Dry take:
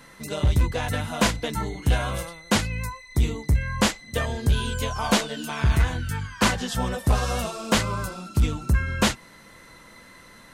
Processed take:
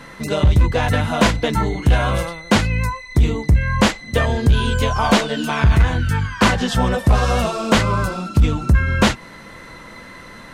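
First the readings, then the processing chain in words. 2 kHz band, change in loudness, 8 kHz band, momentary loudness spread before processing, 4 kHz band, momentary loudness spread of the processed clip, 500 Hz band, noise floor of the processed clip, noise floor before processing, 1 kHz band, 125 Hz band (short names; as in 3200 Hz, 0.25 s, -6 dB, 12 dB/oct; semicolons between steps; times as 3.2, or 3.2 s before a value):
+7.0 dB, +7.0 dB, +1.0 dB, 7 LU, +4.5 dB, 7 LU, +8.5 dB, -39 dBFS, -49 dBFS, +8.0 dB, +7.5 dB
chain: high shelf 5800 Hz -12 dB; in parallel at -3 dB: compressor, threshold -26 dBFS, peak gain reduction 11 dB; on the sum: soft clip -10.5 dBFS, distortion -20 dB; gain +6.5 dB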